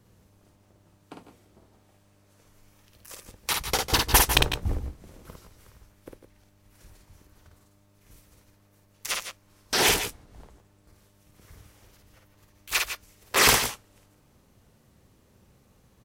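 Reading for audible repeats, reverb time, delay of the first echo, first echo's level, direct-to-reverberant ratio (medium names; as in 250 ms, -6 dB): 2, no reverb, 53 ms, -3.5 dB, no reverb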